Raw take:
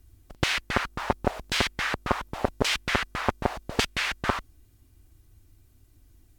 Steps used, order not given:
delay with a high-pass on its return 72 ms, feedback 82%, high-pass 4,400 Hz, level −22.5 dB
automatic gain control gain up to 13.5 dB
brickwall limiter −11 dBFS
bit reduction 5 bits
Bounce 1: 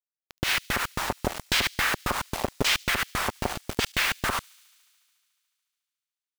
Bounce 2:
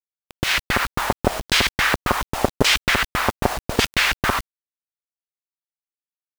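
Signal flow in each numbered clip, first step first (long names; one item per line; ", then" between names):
automatic gain control, then bit reduction, then delay with a high-pass on its return, then brickwall limiter
delay with a high-pass on its return, then brickwall limiter, then automatic gain control, then bit reduction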